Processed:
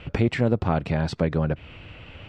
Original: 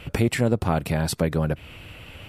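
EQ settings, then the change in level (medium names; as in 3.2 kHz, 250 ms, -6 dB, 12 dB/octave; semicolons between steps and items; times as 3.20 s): low-pass 9 kHz 12 dB/octave; distance through air 150 m; 0.0 dB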